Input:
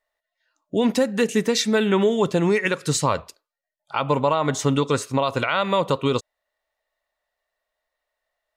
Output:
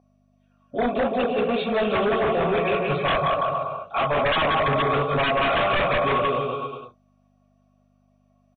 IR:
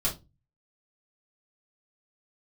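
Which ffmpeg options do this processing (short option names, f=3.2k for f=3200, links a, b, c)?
-filter_complex "[0:a]equalizer=f=93:w=0.77:g=8.5,aecho=1:1:180|333|463|573.6|667.6:0.631|0.398|0.251|0.158|0.1[a];[1:a]atrim=start_sample=2205,atrim=end_sample=4410[b];[a][b]afir=irnorm=-1:irlink=0,aeval=exprs='val(0)+0.0158*(sin(2*PI*50*n/s)+sin(2*PI*2*50*n/s)/2+sin(2*PI*3*50*n/s)/3+sin(2*PI*4*50*n/s)/4+sin(2*PI*5*50*n/s)/5)':c=same,asplit=3[c][d][e];[c]bandpass=f=730:t=q:w=8,volume=0dB[f];[d]bandpass=f=1.09k:t=q:w=8,volume=-6dB[g];[e]bandpass=f=2.44k:t=q:w=8,volume=-9dB[h];[f][g][h]amix=inputs=3:normalize=0,aeval=exprs='(tanh(3.55*val(0)+0.15)-tanh(0.15))/3.55':c=same,aresample=16000,aeval=exprs='0.316*sin(PI/2*3.55*val(0)/0.316)':c=same,aresample=44100,aresample=8000,aresample=44100,volume=-8dB" -ar 24000 -c:a mp2 -b:a 32k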